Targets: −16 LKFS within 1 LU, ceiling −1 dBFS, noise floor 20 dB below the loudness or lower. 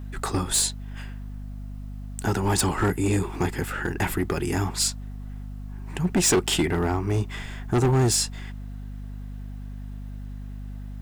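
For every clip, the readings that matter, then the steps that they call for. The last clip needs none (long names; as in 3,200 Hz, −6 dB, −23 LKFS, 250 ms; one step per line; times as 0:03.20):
share of clipped samples 1.6%; peaks flattened at −16.5 dBFS; mains hum 50 Hz; hum harmonics up to 250 Hz; level of the hum −33 dBFS; integrated loudness −24.5 LKFS; sample peak −16.5 dBFS; target loudness −16.0 LKFS
→ clipped peaks rebuilt −16.5 dBFS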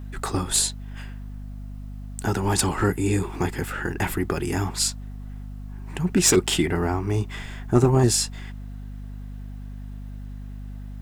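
share of clipped samples 0.0%; mains hum 50 Hz; hum harmonics up to 250 Hz; level of the hum −33 dBFS
→ hum removal 50 Hz, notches 5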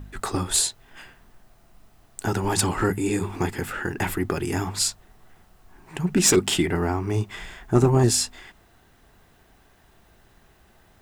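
mains hum none found; integrated loudness −23.5 LKFS; sample peak −6.5 dBFS; target loudness −16.0 LKFS
→ level +7.5 dB
brickwall limiter −1 dBFS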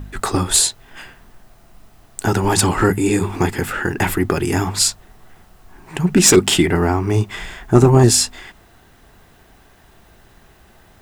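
integrated loudness −16.0 LKFS; sample peak −1.0 dBFS; background noise floor −50 dBFS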